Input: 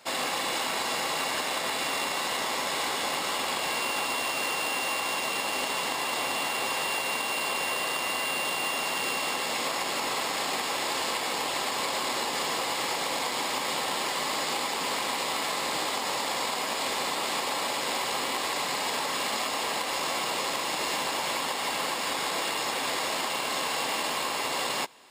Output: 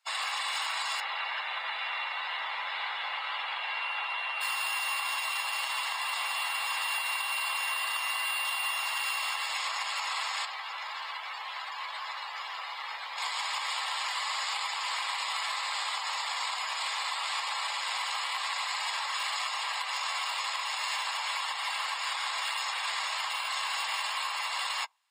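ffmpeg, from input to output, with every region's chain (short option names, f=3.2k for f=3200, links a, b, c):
-filter_complex "[0:a]asettb=1/sr,asplit=3[a][b][c];[a]atrim=end=1.004[d];[b]atrim=start=1:end=4.41,asetpts=PTS-STARTPTS,afade=t=in:d=0.004:c=qsin,afade=t=out:st=3.406:d=0.004:c=qsin,bandreject=f=1.1k:w=12,acrossover=split=4100[e][f];[f]acompressor=threshold=-49dB:ratio=4:attack=1:release=60[g];[e][g]amix=inputs=2:normalize=0,equalizer=f=250:t=o:w=0.74:g=11[h];[c]atrim=start=4.406[i];[d][h]acrossfade=d=0.004:c1=hsin:c2=qsin[j];[j][i]acrossfade=d=0.004:c1=qsin:c2=hsin,asettb=1/sr,asplit=3[k][l][m];[k]atrim=end=10.454[n];[l]atrim=start=10.45:end=13.18,asetpts=PTS-STARTPTS,afade=t=in:d=0.004:c=qsin,afade=t=out:st=2.726:d=0.004:c=qsin,aeval=exprs='clip(val(0),-1,0.01)':c=same,highshelf=f=5.7k:g=-7,asplit=2[o][p];[p]adelay=14,volume=-10.5dB[q];[o][q]amix=inputs=2:normalize=0,atrim=end_sample=120393[r];[m]atrim=start=13.176[s];[n][r]acrossfade=d=0.004:c1=hsin:c2=qsin[t];[t][s]acrossfade=d=0.004:c1=qsin:c2=hsin,afftdn=nr=21:nf=-37,highpass=f=940:w=0.5412,highpass=f=940:w=1.3066"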